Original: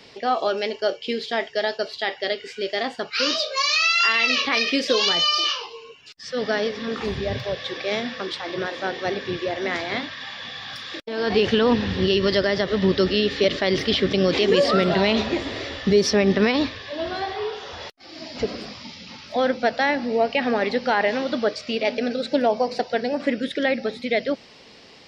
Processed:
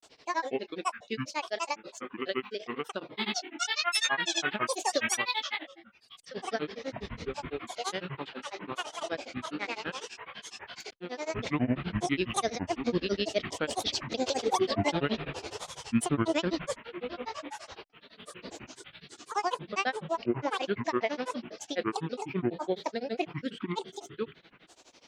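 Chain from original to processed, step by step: bell 110 Hz -11.5 dB 0.6 oct; grains 96 ms, grains 12/s, pitch spread up and down by 12 st; gain -6.5 dB

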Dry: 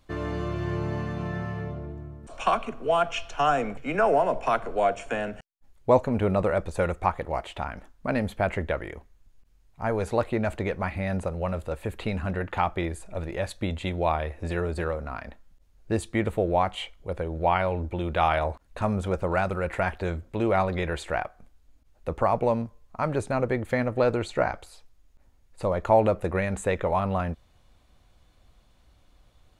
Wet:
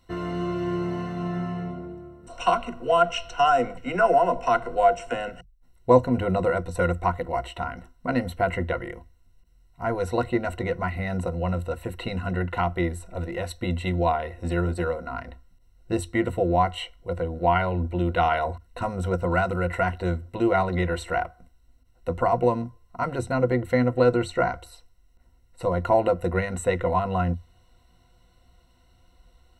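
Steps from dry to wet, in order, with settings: ripple EQ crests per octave 2, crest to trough 16 dB; gain -1.5 dB

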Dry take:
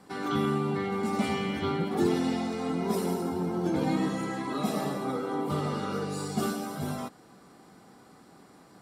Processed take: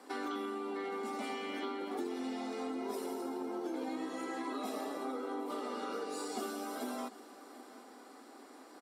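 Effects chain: elliptic high-pass 250 Hz, stop band 40 dB; compressor 6:1, threshold -38 dBFS, peak gain reduction 15 dB; on a send: echo 0.746 s -18 dB; on the sum: gain +1.5 dB

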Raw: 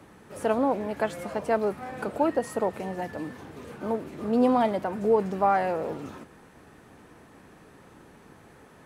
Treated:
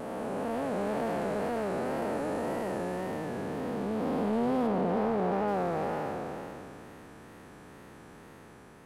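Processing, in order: time blur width 1.01 s; wow and flutter 89 cents; 4.67–5.48 high shelf 3600 Hz -7.5 dB; in parallel at -6 dB: hard clip -36 dBFS, distortion -6 dB

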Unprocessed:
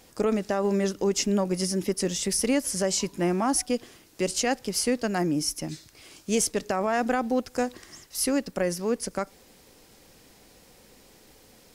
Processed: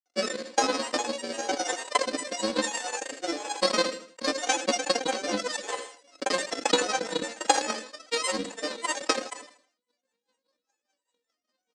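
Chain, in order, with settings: sample sorter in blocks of 64 samples; gate -47 dBFS, range -27 dB; steep high-pass 280 Hz 48 dB/oct; bell 5700 Hz +13 dB 0.28 oct; compressor 4:1, threshold -27 dBFS, peak gain reduction 8.5 dB; grains, pitch spread up and down by 7 st; feedback echo 80 ms, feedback 41%, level -11.5 dB; rotary speaker horn 1 Hz, later 5 Hz, at 3.71; comb 3.9 ms, depth 72%; transient shaper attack +11 dB, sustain -10 dB; steep low-pass 9300 Hz 48 dB/oct; sustainer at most 110 dB/s

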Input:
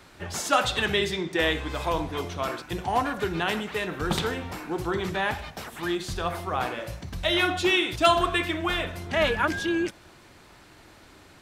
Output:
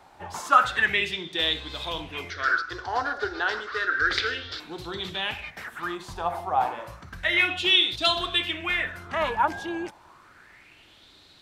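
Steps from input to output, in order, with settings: 2.3–4.6 EQ curve 120 Hz 0 dB, 160 Hz -29 dB, 250 Hz -4 dB, 440 Hz +4 dB, 920 Hz -11 dB, 1500 Hz +12 dB, 2500 Hz -4 dB, 4800 Hz +15 dB, 8000 Hz -7 dB, 11000 Hz -15 dB; LFO bell 0.31 Hz 800–3900 Hz +18 dB; gain -8 dB

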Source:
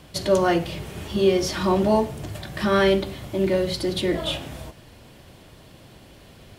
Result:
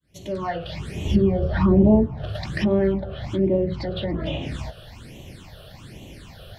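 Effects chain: opening faded in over 1.32 s; treble ducked by the level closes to 880 Hz, closed at -19.5 dBFS; on a send: thin delay 0.279 s, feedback 60%, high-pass 1700 Hz, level -22.5 dB; on the sum: phaser stages 8, 1.2 Hz, lowest notch 270–1500 Hz; in parallel at +2 dB: compressor, threshold -32 dBFS, peak gain reduction 15 dB; 1.05–2.06 on the sum: low shelf 190 Hz +10.5 dB

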